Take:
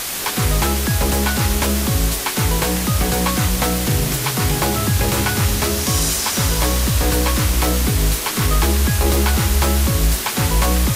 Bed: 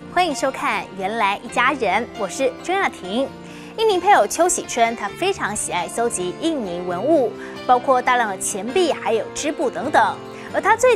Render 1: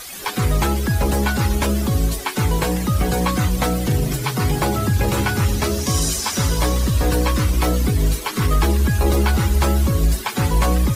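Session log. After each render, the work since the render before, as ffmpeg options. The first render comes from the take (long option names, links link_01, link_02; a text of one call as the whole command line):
ffmpeg -i in.wav -af "afftdn=noise_reduction=13:noise_floor=-25" out.wav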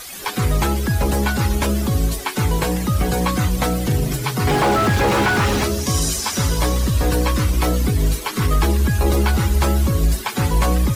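ffmpeg -i in.wav -filter_complex "[0:a]asettb=1/sr,asplit=3[link_01][link_02][link_03];[link_01]atrim=end=4.474[link_04];[link_02]atrim=start=4.47:end=5.62,asetpts=PTS-STARTPTS,afade=type=in:duration=0.004:curve=qsin,afade=type=out:start_time=1.146:duration=0.004:curve=qsin,asplit=2[link_05][link_06];[link_06]highpass=frequency=720:poles=1,volume=30dB,asoftclip=type=tanh:threshold=-8dB[link_07];[link_05][link_07]amix=inputs=2:normalize=0,lowpass=frequency=1500:poles=1,volume=-6dB[link_08];[link_03]atrim=start=5.616[link_09];[link_04][link_08]acrossfade=duration=0.004:curve1=hsin:curve2=qsin[link_10];[link_10][link_09]acrossfade=duration=0.004:curve1=qsin:curve2=hsin" out.wav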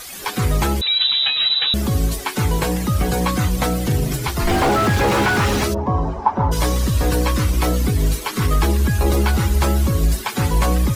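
ffmpeg -i in.wav -filter_complex "[0:a]asettb=1/sr,asplit=3[link_01][link_02][link_03];[link_01]atrim=end=0.814[link_04];[link_02]atrim=start=0.81:end=1.74,asetpts=PTS-STARTPTS,afade=type=in:duration=0.004:curve=qsin,afade=type=out:start_time=0.926:duration=0.004:curve=qsin,lowpass=frequency=3400:width_type=q:width=0.5098,lowpass=frequency=3400:width_type=q:width=0.6013,lowpass=frequency=3400:width_type=q:width=0.9,lowpass=frequency=3400:width_type=q:width=2.563,afreqshift=-4000[link_05];[link_03]atrim=start=1.736[link_06];[link_04][link_05]acrossfade=duration=0.004:curve1=hsin:curve2=qsin[link_07];[link_07][link_06]acrossfade=duration=0.004:curve1=qsin:curve2=hsin,asettb=1/sr,asplit=3[link_08][link_09][link_10];[link_08]atrim=end=4.274[link_11];[link_09]atrim=start=4.27:end=4.69,asetpts=PTS-STARTPTS,afade=type=in:duration=0.004:curve=qsin,afade=type=out:start_time=0.416:duration=0.004:curve=qsin,afreqshift=-63[link_12];[link_10]atrim=start=4.686[link_13];[link_11][link_12]acrossfade=duration=0.004:curve1=hsin:curve2=qsin[link_14];[link_14][link_13]acrossfade=duration=0.004:curve1=qsin:curve2=hsin,asplit=3[link_15][link_16][link_17];[link_15]afade=type=out:start_time=5.73:duration=0.02[link_18];[link_16]lowpass=frequency=890:width_type=q:width=5.5,afade=type=in:start_time=5.73:duration=0.02,afade=type=out:start_time=6.51:duration=0.02[link_19];[link_17]afade=type=in:start_time=6.51:duration=0.02[link_20];[link_18][link_19][link_20]amix=inputs=3:normalize=0" out.wav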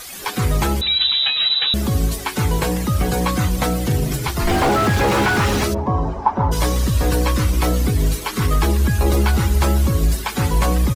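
ffmpeg -i in.wav -filter_complex "[0:a]asplit=2[link_01][link_02];[link_02]adelay=144,lowpass=frequency=840:poles=1,volume=-19dB,asplit=2[link_03][link_04];[link_04]adelay=144,lowpass=frequency=840:poles=1,volume=0.39,asplit=2[link_05][link_06];[link_06]adelay=144,lowpass=frequency=840:poles=1,volume=0.39[link_07];[link_01][link_03][link_05][link_07]amix=inputs=4:normalize=0" out.wav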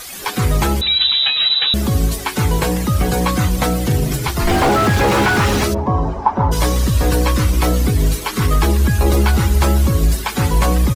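ffmpeg -i in.wav -af "volume=2.5dB,alimiter=limit=-2dB:level=0:latency=1" out.wav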